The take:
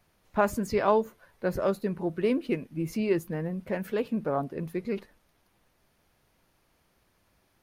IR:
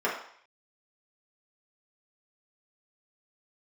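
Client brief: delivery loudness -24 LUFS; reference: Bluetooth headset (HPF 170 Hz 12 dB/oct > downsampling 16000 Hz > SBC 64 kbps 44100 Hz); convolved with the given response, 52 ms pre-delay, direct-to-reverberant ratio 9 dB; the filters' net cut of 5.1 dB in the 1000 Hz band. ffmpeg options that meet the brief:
-filter_complex "[0:a]equalizer=f=1k:t=o:g=-6.5,asplit=2[a][b];[1:a]atrim=start_sample=2205,adelay=52[c];[b][c]afir=irnorm=-1:irlink=0,volume=-21dB[d];[a][d]amix=inputs=2:normalize=0,highpass=170,aresample=16000,aresample=44100,volume=6.5dB" -ar 44100 -c:a sbc -b:a 64k

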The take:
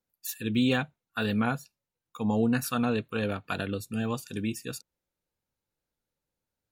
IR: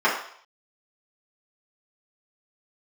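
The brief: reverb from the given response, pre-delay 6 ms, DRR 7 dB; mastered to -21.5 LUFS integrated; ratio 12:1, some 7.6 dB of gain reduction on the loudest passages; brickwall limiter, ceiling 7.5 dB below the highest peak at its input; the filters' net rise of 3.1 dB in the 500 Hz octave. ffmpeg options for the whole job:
-filter_complex "[0:a]equalizer=f=500:t=o:g=3.5,acompressor=threshold=-27dB:ratio=12,alimiter=limit=-22.5dB:level=0:latency=1,asplit=2[a][b];[1:a]atrim=start_sample=2205,adelay=6[c];[b][c]afir=irnorm=-1:irlink=0,volume=-26dB[d];[a][d]amix=inputs=2:normalize=0,volume=13dB"

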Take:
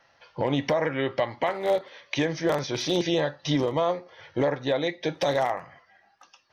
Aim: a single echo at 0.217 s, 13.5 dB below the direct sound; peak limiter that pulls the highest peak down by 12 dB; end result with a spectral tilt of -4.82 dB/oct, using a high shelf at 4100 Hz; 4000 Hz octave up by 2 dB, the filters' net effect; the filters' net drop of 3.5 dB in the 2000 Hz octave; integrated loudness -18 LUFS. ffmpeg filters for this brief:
-af "equalizer=f=2k:t=o:g=-4.5,equalizer=f=4k:t=o:g=6.5,highshelf=f=4.1k:g=-5,alimiter=level_in=1dB:limit=-24dB:level=0:latency=1,volume=-1dB,aecho=1:1:217:0.211,volume=17dB"

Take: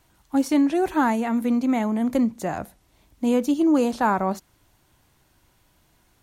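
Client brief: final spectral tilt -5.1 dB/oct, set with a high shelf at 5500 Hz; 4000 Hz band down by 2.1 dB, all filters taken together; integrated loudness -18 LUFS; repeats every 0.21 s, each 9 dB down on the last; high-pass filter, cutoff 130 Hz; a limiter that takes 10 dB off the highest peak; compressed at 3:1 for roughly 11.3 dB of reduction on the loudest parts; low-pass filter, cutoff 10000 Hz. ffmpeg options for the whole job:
-af "highpass=130,lowpass=10k,equalizer=f=4k:t=o:g=-5,highshelf=f=5.5k:g=5,acompressor=threshold=-32dB:ratio=3,alimiter=level_in=6dB:limit=-24dB:level=0:latency=1,volume=-6dB,aecho=1:1:210|420|630|840:0.355|0.124|0.0435|0.0152,volume=20dB"

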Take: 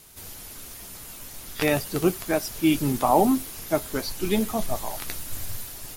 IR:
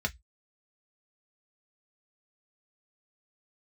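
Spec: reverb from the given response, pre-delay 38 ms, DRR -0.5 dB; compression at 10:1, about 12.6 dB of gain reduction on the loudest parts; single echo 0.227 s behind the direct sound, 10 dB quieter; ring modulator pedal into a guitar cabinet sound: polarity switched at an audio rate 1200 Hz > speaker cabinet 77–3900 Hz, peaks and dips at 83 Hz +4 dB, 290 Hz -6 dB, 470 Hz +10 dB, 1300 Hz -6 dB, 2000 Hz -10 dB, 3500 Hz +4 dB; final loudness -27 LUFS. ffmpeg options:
-filter_complex "[0:a]acompressor=threshold=-28dB:ratio=10,aecho=1:1:227:0.316,asplit=2[a][b];[1:a]atrim=start_sample=2205,adelay=38[c];[b][c]afir=irnorm=-1:irlink=0,volume=-5.5dB[d];[a][d]amix=inputs=2:normalize=0,aeval=exprs='val(0)*sgn(sin(2*PI*1200*n/s))':c=same,highpass=77,equalizer=f=83:t=q:w=4:g=4,equalizer=f=290:t=q:w=4:g=-6,equalizer=f=470:t=q:w=4:g=10,equalizer=f=1.3k:t=q:w=4:g=-6,equalizer=f=2k:t=q:w=4:g=-10,equalizer=f=3.5k:t=q:w=4:g=4,lowpass=f=3.9k:w=0.5412,lowpass=f=3.9k:w=1.3066,volume=5dB"

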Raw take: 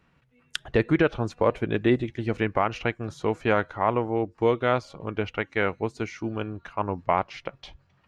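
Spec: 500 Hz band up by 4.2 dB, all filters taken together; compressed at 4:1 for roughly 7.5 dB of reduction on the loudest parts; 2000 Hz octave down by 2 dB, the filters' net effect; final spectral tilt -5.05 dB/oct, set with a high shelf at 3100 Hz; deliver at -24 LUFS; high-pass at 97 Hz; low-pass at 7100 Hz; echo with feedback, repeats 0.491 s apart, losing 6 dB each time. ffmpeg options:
-af "highpass=97,lowpass=7.1k,equalizer=f=500:t=o:g=5,equalizer=f=2k:t=o:g=-4.5,highshelf=f=3.1k:g=4.5,acompressor=threshold=-22dB:ratio=4,aecho=1:1:491|982|1473|1964|2455|2946:0.501|0.251|0.125|0.0626|0.0313|0.0157,volume=4dB"

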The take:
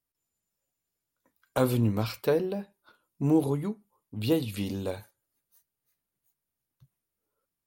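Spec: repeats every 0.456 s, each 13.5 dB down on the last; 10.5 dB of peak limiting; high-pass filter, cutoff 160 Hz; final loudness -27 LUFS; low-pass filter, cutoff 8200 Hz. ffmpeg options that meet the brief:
-af "highpass=160,lowpass=8.2k,alimiter=limit=-21.5dB:level=0:latency=1,aecho=1:1:456|912:0.211|0.0444,volume=7dB"

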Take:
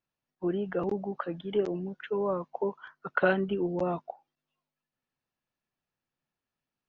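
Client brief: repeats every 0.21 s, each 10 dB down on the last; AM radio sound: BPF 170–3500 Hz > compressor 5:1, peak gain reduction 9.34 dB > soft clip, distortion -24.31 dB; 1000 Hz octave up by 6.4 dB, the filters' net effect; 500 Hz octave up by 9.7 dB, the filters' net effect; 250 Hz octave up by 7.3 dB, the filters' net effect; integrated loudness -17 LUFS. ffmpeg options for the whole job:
-af "highpass=170,lowpass=3.5k,equalizer=f=250:t=o:g=9,equalizer=f=500:t=o:g=8.5,equalizer=f=1k:t=o:g=5,aecho=1:1:210|420|630|840:0.316|0.101|0.0324|0.0104,acompressor=threshold=-20dB:ratio=5,asoftclip=threshold=-13dB,volume=10dB"

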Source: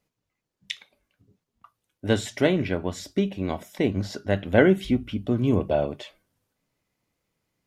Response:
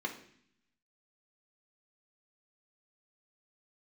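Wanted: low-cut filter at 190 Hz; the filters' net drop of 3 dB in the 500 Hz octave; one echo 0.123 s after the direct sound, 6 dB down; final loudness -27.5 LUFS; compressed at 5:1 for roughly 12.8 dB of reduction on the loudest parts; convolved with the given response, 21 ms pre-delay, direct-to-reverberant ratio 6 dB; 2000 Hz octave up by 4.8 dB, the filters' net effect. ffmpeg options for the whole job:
-filter_complex "[0:a]highpass=190,equalizer=f=500:t=o:g=-4,equalizer=f=2k:t=o:g=6.5,acompressor=threshold=-27dB:ratio=5,aecho=1:1:123:0.501,asplit=2[a][b];[1:a]atrim=start_sample=2205,adelay=21[c];[b][c]afir=irnorm=-1:irlink=0,volume=-9.5dB[d];[a][d]amix=inputs=2:normalize=0,volume=3.5dB"

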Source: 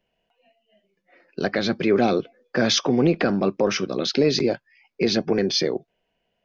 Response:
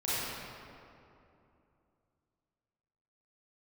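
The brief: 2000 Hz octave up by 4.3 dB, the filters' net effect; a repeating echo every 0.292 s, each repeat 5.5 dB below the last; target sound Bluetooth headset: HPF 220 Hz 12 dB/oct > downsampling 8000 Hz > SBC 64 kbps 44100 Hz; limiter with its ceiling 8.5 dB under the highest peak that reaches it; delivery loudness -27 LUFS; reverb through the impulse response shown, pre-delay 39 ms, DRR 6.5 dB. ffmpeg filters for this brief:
-filter_complex "[0:a]equalizer=f=2k:t=o:g=5.5,alimiter=limit=-15dB:level=0:latency=1,aecho=1:1:292|584|876|1168|1460|1752|2044:0.531|0.281|0.149|0.079|0.0419|0.0222|0.0118,asplit=2[a][b];[1:a]atrim=start_sample=2205,adelay=39[c];[b][c]afir=irnorm=-1:irlink=0,volume=-15dB[d];[a][d]amix=inputs=2:normalize=0,highpass=220,aresample=8000,aresample=44100,volume=-1.5dB" -ar 44100 -c:a sbc -b:a 64k

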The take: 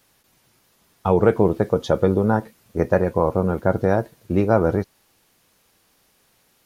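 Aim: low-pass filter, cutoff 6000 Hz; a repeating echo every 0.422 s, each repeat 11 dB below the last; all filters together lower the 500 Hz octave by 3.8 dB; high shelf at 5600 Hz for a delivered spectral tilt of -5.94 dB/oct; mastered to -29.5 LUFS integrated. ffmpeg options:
-af "lowpass=6k,equalizer=f=500:t=o:g=-4.5,highshelf=f=5.6k:g=-9,aecho=1:1:422|844|1266:0.282|0.0789|0.0221,volume=-6.5dB"

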